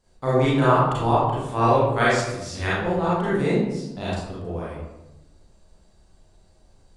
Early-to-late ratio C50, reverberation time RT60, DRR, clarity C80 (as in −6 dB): −3.0 dB, 0.95 s, −9.5 dB, 2.0 dB